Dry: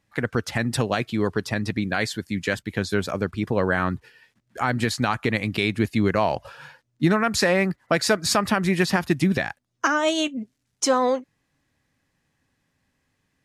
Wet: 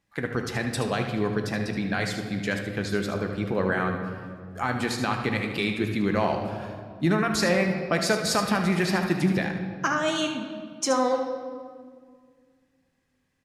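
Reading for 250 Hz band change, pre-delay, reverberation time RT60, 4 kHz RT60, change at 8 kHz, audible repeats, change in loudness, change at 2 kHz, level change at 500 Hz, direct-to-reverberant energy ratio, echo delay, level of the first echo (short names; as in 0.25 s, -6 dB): -2.0 dB, 3 ms, 1.9 s, 1.3 s, -3.5 dB, 1, -3.0 dB, -3.0 dB, -2.5 dB, 3.0 dB, 75 ms, -9.5 dB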